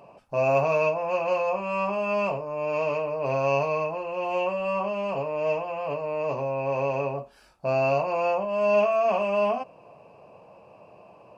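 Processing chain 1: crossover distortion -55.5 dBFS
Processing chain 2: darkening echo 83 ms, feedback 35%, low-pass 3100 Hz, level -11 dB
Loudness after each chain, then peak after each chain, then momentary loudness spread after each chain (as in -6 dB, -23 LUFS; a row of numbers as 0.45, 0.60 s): -26.5, -26.0 LUFS; -11.5, -10.5 dBFS; 8, 7 LU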